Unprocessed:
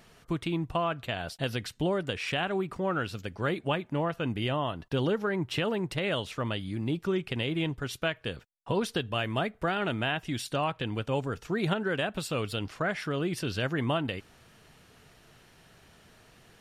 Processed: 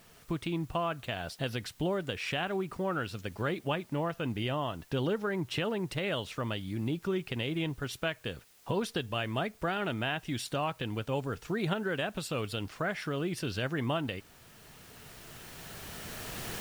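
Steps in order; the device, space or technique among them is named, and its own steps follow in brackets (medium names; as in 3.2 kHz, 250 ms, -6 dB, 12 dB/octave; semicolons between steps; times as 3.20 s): cheap recorder with automatic gain (white noise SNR 29 dB; recorder AGC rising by 8.2 dB/s); trim -3 dB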